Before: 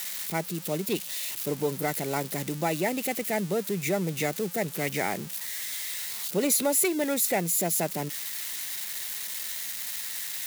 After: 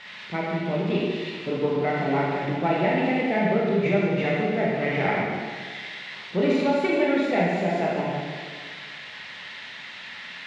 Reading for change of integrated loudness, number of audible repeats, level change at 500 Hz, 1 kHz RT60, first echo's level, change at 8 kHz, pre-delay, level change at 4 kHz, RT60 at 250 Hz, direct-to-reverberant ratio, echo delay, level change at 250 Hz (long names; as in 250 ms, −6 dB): +3.5 dB, no echo audible, +6.0 dB, 1.7 s, no echo audible, below −25 dB, 16 ms, −0.5 dB, 1.7 s, −5.5 dB, no echo audible, +6.5 dB